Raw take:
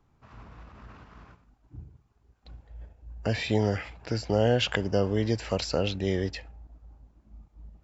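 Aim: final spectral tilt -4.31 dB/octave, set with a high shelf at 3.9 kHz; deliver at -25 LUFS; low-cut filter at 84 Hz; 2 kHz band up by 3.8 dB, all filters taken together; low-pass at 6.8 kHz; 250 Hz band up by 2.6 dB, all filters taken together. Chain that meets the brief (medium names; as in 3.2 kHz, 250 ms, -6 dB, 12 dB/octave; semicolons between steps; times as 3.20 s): high-pass 84 Hz; low-pass 6.8 kHz; peaking EQ 250 Hz +3.5 dB; peaking EQ 2 kHz +3 dB; treble shelf 3.9 kHz +7 dB; trim +1.5 dB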